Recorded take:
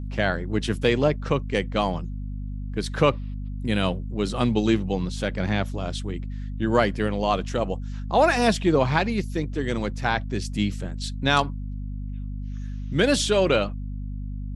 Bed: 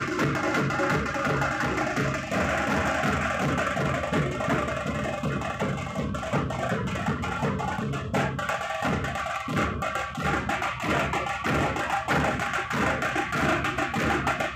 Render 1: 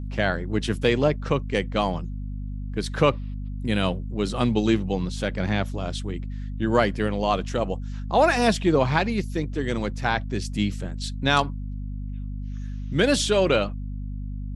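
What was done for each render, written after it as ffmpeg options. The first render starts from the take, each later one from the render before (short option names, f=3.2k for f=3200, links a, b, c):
-af anull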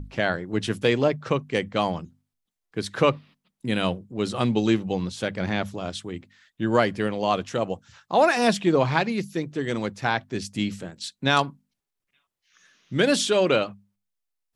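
-af "bandreject=f=50:t=h:w=6,bandreject=f=100:t=h:w=6,bandreject=f=150:t=h:w=6,bandreject=f=200:t=h:w=6,bandreject=f=250:t=h:w=6"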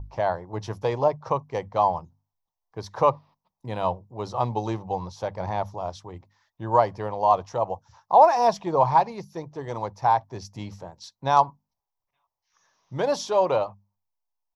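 -af "firequalizer=gain_entry='entry(100,0);entry(220,-14);entry(530,-1);entry(930,11);entry(1400,-11);entry(2000,-12);entry(2900,-16);entry(5700,-3);entry(8600,-24);entry(13000,-4)':delay=0.05:min_phase=1"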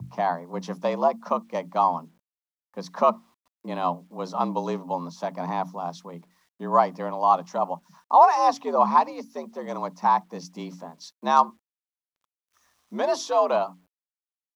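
-af "afreqshift=79,acrusher=bits=10:mix=0:aa=0.000001"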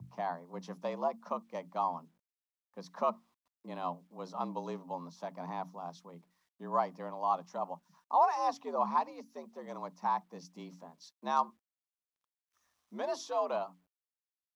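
-af "volume=-11.5dB"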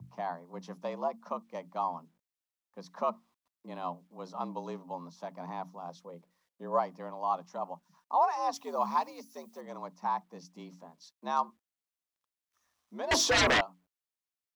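-filter_complex "[0:a]asettb=1/sr,asplit=3[a][b][c];[a]atrim=end=5.894[d];[b]atrim=start=5.89:end=6.79,asetpts=PTS-STARTPTS,afade=t=in:d=0.004:c=qsin,afade=t=out:st=0.896:d=0.004:c=qsin,equalizer=f=520:t=o:w=0.37:g=11[e];[c]atrim=start=6.786[f];[d][e]acrossfade=d=0.004:c1=hsin:c2=qsin[g];[g][f]acrossfade=d=0.004:c1=qsin:c2=hsin,asettb=1/sr,asplit=3[h][i][j];[h]atrim=end=8.534[k];[i]atrim=start=8.53:end=9.61,asetpts=PTS-STARTPTS,afade=t=in:d=0.004:c=qsin,afade=t=out:st=1.076:d=0.004:c=qsin,aemphasis=mode=production:type=75kf[l];[j]atrim=start=9.606[m];[k][l]acrossfade=d=0.004:c1=hsin:c2=qsin[n];[n][m]acrossfade=d=0.004:c1=qsin:c2=hsin,asettb=1/sr,asplit=3[o][p][q];[o]atrim=end=13.114[r];[p]atrim=start=13.11:end=13.61,asetpts=PTS-STARTPTS,afade=t=in:d=0.004:c=qsin,afade=t=out:st=0.496:d=0.004:c=qsin,aeval=exprs='0.0891*sin(PI/2*6.31*val(0)/0.0891)':c=same[s];[q]atrim=start=13.606[t];[r][s]acrossfade=d=0.004:c1=hsin:c2=qsin[u];[u][t]acrossfade=d=0.004:c1=qsin:c2=hsin"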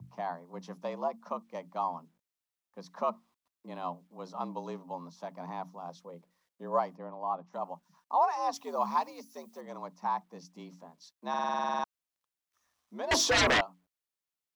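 -filter_complex "[0:a]asplit=3[a][b][c];[a]afade=t=out:st=6.95:d=0.02[d];[b]lowpass=f=1k:p=1,afade=t=in:st=6.95:d=0.02,afade=t=out:st=7.52:d=0.02[e];[c]afade=t=in:st=7.52:d=0.02[f];[d][e][f]amix=inputs=3:normalize=0,asplit=12[g][h][i][j][k][l][m][n][o][p][q][r];[g]atrim=end=11.342[s];[h]atrim=start=11.288:end=11.342[t];[i]atrim=start=11.288:end=11.342[u];[j]atrim=start=11.288:end=11.342[v];[k]atrim=start=11.288:end=11.342[w];[l]atrim=start=11.288:end=11.342[x];[m]atrim=start=11.288:end=11.342[y];[n]atrim=start=11.288:end=11.342[z];[o]atrim=start=11.288:end=11.342[aa];[p]atrim=start=11.288:end=11.342[ab];[q]atrim=start=11.288:end=11.342[ac];[r]atrim=start=11.838[ad];[s][t]acrossfade=d=0.004:c1=hsin:c2=hsin[ae];[ae][u]acrossfade=d=0.004:c1=hsin:c2=hsin[af];[af][v]acrossfade=d=0.004:c1=hsin:c2=hsin[ag];[ag][w]acrossfade=d=0.004:c1=hsin:c2=hsin[ah];[ah][x]acrossfade=d=0.004:c1=hsin:c2=hsin[ai];[ai][y]acrossfade=d=0.004:c1=hsin:c2=hsin[aj];[aj][z]acrossfade=d=0.004:c1=hsin:c2=hsin[ak];[ak][aa]acrossfade=d=0.004:c1=hsin:c2=hsin[al];[al][ab]acrossfade=d=0.004:c1=hsin:c2=hsin[am];[am][ac]acrossfade=d=0.004:c1=hsin:c2=hsin[an];[an][ad]acrossfade=d=0.004:c1=hsin:c2=hsin"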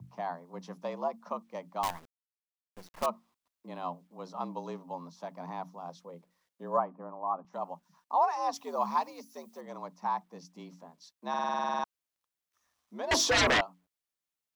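-filter_complex "[0:a]asettb=1/sr,asplit=3[a][b][c];[a]atrim=end=1.834[d];[b]atrim=start=1.83:end=3.06,asetpts=PTS-STARTPTS,afade=t=in:d=0.004:c=qsin,afade=t=out:st=1.226:d=0.004:c=qsin,acrusher=bits=6:dc=4:mix=0:aa=0.000001[e];[c]atrim=start=3.056[f];[d][e]acrossfade=d=0.004:c1=hsin:c2=qsin[g];[g][f]acrossfade=d=0.004:c1=qsin:c2=hsin,asettb=1/sr,asplit=3[h][i][j];[h]atrim=end=6.774[k];[i]atrim=start=6.77:end=7.45,asetpts=PTS-STARTPTS,afade=t=in:d=0.004:c=qsin,afade=t=out:st=0.676:d=0.004:c=qsin,highpass=f=210:w=0.5412,highpass=f=210:w=1.3066,equalizer=f=210:t=q:w=4:g=8,equalizer=f=470:t=q:w=4:g=-3,equalizer=f=1.2k:t=q:w=4:g=4,equalizer=f=2k:t=q:w=4:g=-9,lowpass=f=2.1k:w=0.5412,lowpass=f=2.1k:w=1.3066[l];[j]atrim=start=7.446[m];[k][l]acrossfade=d=0.004:c1=hsin:c2=qsin[n];[n][m]acrossfade=d=0.004:c1=qsin:c2=hsin"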